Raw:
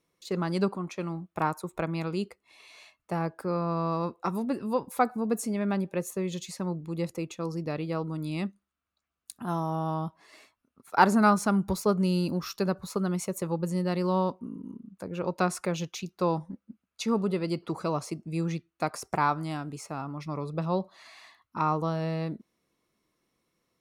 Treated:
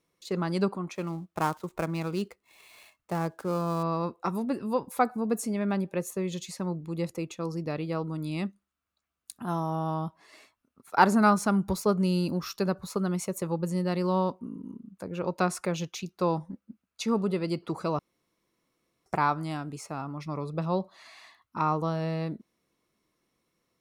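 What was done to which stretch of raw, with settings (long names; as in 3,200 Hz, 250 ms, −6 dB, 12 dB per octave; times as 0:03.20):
0:00.95–0:03.83: gap after every zero crossing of 0.06 ms
0:17.99–0:19.06: fill with room tone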